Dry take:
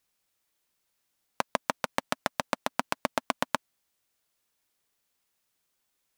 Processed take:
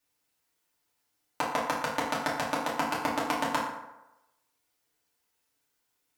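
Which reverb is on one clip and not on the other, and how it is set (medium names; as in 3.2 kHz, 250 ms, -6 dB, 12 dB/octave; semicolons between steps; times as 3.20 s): FDN reverb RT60 0.97 s, low-frequency decay 0.8×, high-frequency decay 0.55×, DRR -7 dB; trim -6 dB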